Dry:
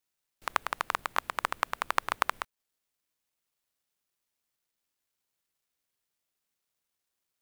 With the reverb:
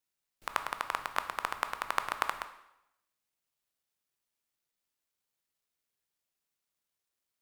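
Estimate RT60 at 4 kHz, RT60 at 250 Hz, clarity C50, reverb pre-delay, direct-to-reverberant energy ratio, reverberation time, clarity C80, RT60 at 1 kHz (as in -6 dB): 0.80 s, 0.85 s, 12.0 dB, 7 ms, 8.5 dB, 0.85 s, 14.0 dB, 0.85 s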